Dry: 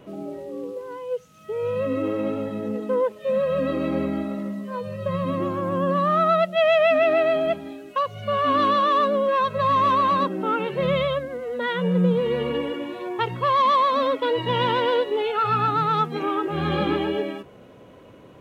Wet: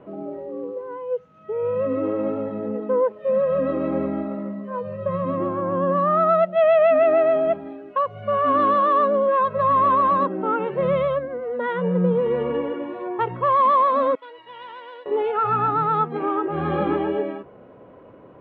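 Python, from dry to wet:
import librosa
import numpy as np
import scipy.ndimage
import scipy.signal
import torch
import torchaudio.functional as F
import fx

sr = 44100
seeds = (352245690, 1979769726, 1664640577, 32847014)

y = fx.differentiator(x, sr, at=(14.15, 15.06))
y = scipy.signal.sosfilt(scipy.signal.butter(2, 1300.0, 'lowpass', fs=sr, output='sos'), y)
y = fx.low_shelf(y, sr, hz=270.0, db=-7.5)
y = F.gain(torch.from_numpy(y), 4.0).numpy()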